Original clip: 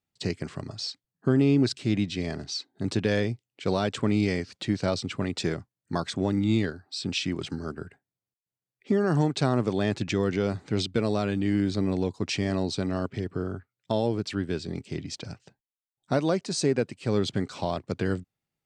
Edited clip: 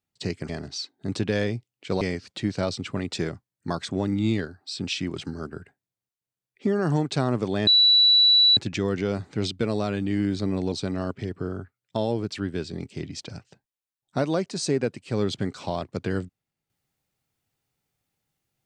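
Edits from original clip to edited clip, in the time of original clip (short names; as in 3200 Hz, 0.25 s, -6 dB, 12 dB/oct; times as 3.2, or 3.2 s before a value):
0.49–2.25 cut
3.77–4.26 cut
9.92 add tone 3940 Hz -13.5 dBFS 0.90 s
12.07–12.67 cut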